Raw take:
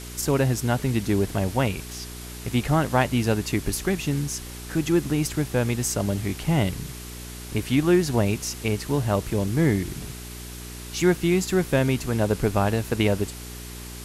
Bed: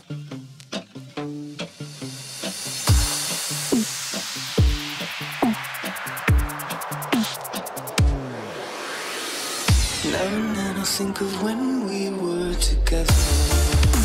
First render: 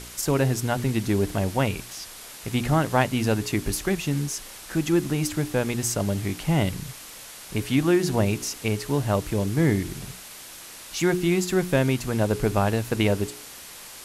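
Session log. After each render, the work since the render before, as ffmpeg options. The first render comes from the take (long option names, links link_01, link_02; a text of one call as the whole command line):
ffmpeg -i in.wav -af "bandreject=frequency=60:width_type=h:width=4,bandreject=frequency=120:width_type=h:width=4,bandreject=frequency=180:width_type=h:width=4,bandreject=frequency=240:width_type=h:width=4,bandreject=frequency=300:width_type=h:width=4,bandreject=frequency=360:width_type=h:width=4,bandreject=frequency=420:width_type=h:width=4" out.wav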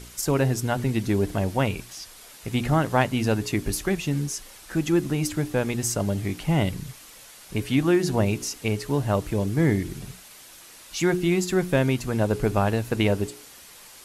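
ffmpeg -i in.wav -af "afftdn=noise_reduction=6:noise_floor=-42" out.wav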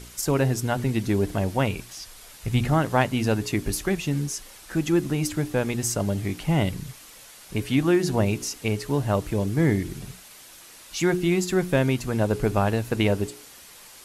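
ffmpeg -i in.wav -filter_complex "[0:a]asettb=1/sr,asplit=3[link_01][link_02][link_03];[link_01]atrim=end=1.854[link_04];[link_02]atrim=start=1.85:end=2.65,asetpts=PTS-STARTPTS,afade=type=in:duration=0.004:curve=qsin,afade=type=out:start_time=0.796:duration=0.004:curve=qsin,asubboost=boost=11:cutoff=150[link_05];[link_03]atrim=start=2.646[link_06];[link_04][link_05]acrossfade=duration=0.004:curve1=hsin:curve2=qsin[link_07];[link_07][link_06]acrossfade=duration=0.004:curve1=qsin:curve2=hsin" out.wav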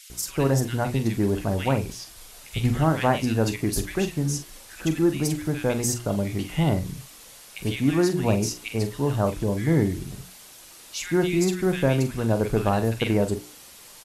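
ffmpeg -i in.wav -filter_complex "[0:a]asplit=2[link_01][link_02];[link_02]adelay=44,volume=-10dB[link_03];[link_01][link_03]amix=inputs=2:normalize=0,acrossover=split=1800[link_04][link_05];[link_04]adelay=100[link_06];[link_06][link_05]amix=inputs=2:normalize=0" out.wav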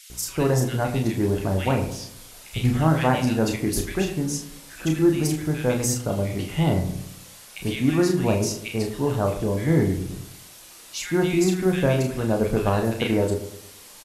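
ffmpeg -i in.wav -filter_complex "[0:a]asplit=2[link_01][link_02];[link_02]adelay=32,volume=-6dB[link_03];[link_01][link_03]amix=inputs=2:normalize=0,asplit=2[link_04][link_05];[link_05]adelay=109,lowpass=frequency=1200:poles=1,volume=-10.5dB,asplit=2[link_06][link_07];[link_07]adelay=109,lowpass=frequency=1200:poles=1,volume=0.45,asplit=2[link_08][link_09];[link_09]adelay=109,lowpass=frequency=1200:poles=1,volume=0.45,asplit=2[link_10][link_11];[link_11]adelay=109,lowpass=frequency=1200:poles=1,volume=0.45,asplit=2[link_12][link_13];[link_13]adelay=109,lowpass=frequency=1200:poles=1,volume=0.45[link_14];[link_04][link_06][link_08][link_10][link_12][link_14]amix=inputs=6:normalize=0" out.wav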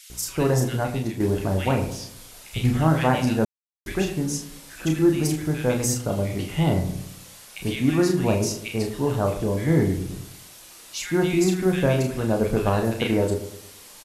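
ffmpeg -i in.wav -filter_complex "[0:a]asplit=4[link_01][link_02][link_03][link_04];[link_01]atrim=end=1.2,asetpts=PTS-STARTPTS,afade=type=out:start_time=0.72:duration=0.48:silence=0.501187[link_05];[link_02]atrim=start=1.2:end=3.45,asetpts=PTS-STARTPTS,afade=type=in:duration=0.004:curve=hsin:silence=0.501187,afade=type=out:start_time=2.246:duration=0.004:curve=hsin[link_06];[link_03]atrim=start=3.45:end=3.86,asetpts=PTS-STARTPTS,volume=0[link_07];[link_04]atrim=start=3.86,asetpts=PTS-STARTPTS,afade=type=in:duration=0.004:curve=hsin[link_08];[link_05][link_06][link_07][link_08]concat=n=4:v=0:a=1" out.wav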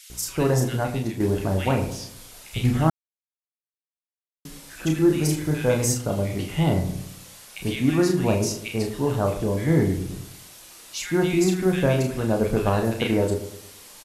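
ffmpeg -i in.wav -filter_complex "[0:a]asettb=1/sr,asplit=3[link_01][link_02][link_03];[link_01]atrim=end=5.074[link_04];[link_02]atrim=start=5.07:end=5.92,asetpts=PTS-STARTPTS,afade=type=in:duration=0.004:curve=qsin,afade=type=out:start_time=0.846:duration=0.004:curve=qsin,asplit=2[link_05][link_06];[link_06]adelay=34,volume=-5.5dB[link_07];[link_05][link_07]amix=inputs=2:normalize=0,atrim=end_sample=37485[link_08];[link_03]atrim=start=5.916[link_09];[link_04][link_08]acrossfade=duration=0.004:curve1=hsin:curve2=qsin[link_10];[link_10][link_09]acrossfade=duration=0.004:curve1=qsin:curve2=hsin,asplit=3[link_11][link_12][link_13];[link_11]atrim=end=2.9,asetpts=PTS-STARTPTS,afade=type=out:start_time=2.896:duration=0.004:curve=hsin[link_14];[link_12]atrim=start=2.9:end=4.45,asetpts=PTS-STARTPTS,volume=0[link_15];[link_13]atrim=start=4.45,asetpts=PTS-STARTPTS,afade=type=in:duration=0.004:curve=hsin[link_16];[link_14][link_15][link_16]concat=n=3:v=0:a=1" out.wav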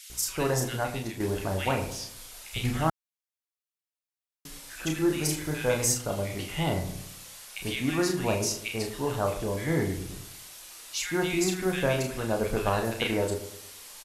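ffmpeg -i in.wav -af "equalizer=frequency=170:width=0.36:gain=-9" out.wav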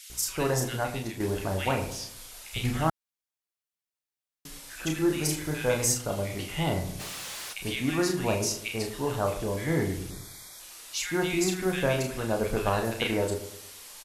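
ffmpeg -i in.wav -filter_complex "[0:a]asplit=3[link_01][link_02][link_03];[link_01]afade=type=out:start_time=6.99:duration=0.02[link_04];[link_02]asplit=2[link_05][link_06];[link_06]highpass=frequency=720:poles=1,volume=29dB,asoftclip=type=tanh:threshold=-27.5dB[link_07];[link_05][link_07]amix=inputs=2:normalize=0,lowpass=frequency=4200:poles=1,volume=-6dB,afade=type=in:start_time=6.99:duration=0.02,afade=type=out:start_time=7.52:duration=0.02[link_08];[link_03]afade=type=in:start_time=7.52:duration=0.02[link_09];[link_04][link_08][link_09]amix=inputs=3:normalize=0,asettb=1/sr,asplit=3[link_10][link_11][link_12];[link_10]atrim=end=10.104[link_13];[link_11]atrim=start=10.1:end=10.6,asetpts=PTS-STARTPTS,afade=type=in:duration=0.004:curve=qsin,afade=type=out:start_time=0.496:duration=0.004:curve=qsin,asuperstop=centerf=2800:order=12:qfactor=3.9[link_14];[link_12]atrim=start=10.596[link_15];[link_13][link_14]acrossfade=duration=0.004:curve1=hsin:curve2=qsin[link_16];[link_16][link_15]acrossfade=duration=0.004:curve1=qsin:curve2=hsin" out.wav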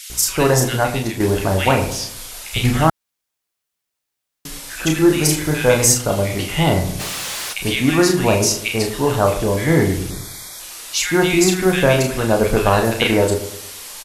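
ffmpeg -i in.wav -af "volume=12dB,alimiter=limit=-2dB:level=0:latency=1" out.wav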